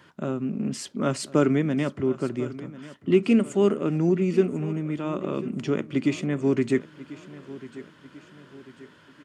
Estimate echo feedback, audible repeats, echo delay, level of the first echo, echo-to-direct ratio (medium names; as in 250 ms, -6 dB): 45%, 3, 1043 ms, -17.0 dB, -16.0 dB